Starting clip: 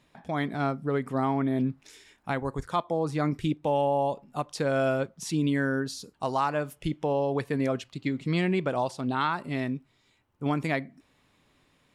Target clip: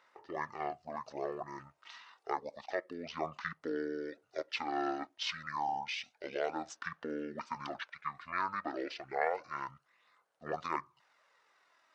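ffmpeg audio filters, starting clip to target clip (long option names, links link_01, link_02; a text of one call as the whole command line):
ffmpeg -i in.wav -af "aphaser=in_gain=1:out_gain=1:delay=1.7:decay=0.34:speed=0.29:type=sinusoidal,highpass=1500,asetrate=23361,aresample=44100,atempo=1.88775,volume=1dB" out.wav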